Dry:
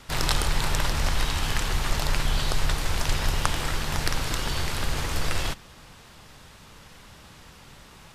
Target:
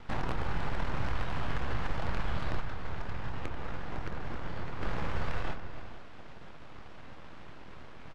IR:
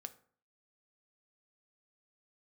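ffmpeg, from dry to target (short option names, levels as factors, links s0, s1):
-filter_complex "[0:a]asplit=2[s0][s1];[s1]adelay=25,volume=0.473[s2];[s0][s2]amix=inputs=2:normalize=0[s3];[1:a]atrim=start_sample=2205[s4];[s3][s4]afir=irnorm=-1:irlink=0,aeval=exprs='abs(val(0))':c=same,acrossover=split=860|2000[s5][s6][s7];[s5]acompressor=threshold=0.0158:ratio=4[s8];[s6]acompressor=threshold=0.00355:ratio=4[s9];[s7]acompressor=threshold=0.00251:ratio=4[s10];[s8][s9][s10]amix=inputs=3:normalize=0,aecho=1:1:286|474:0.282|0.158,asplit=3[s11][s12][s13];[s11]afade=t=out:st=2.6:d=0.02[s14];[s12]flanger=delay=7:depth=10:regen=-73:speed=1.5:shape=triangular,afade=t=in:st=2.6:d=0.02,afade=t=out:st=4.81:d=0.02[s15];[s13]afade=t=in:st=4.81:d=0.02[s16];[s14][s15][s16]amix=inputs=3:normalize=0,adynamicsmooth=sensitivity=5.5:basefreq=2100,volume=2.51"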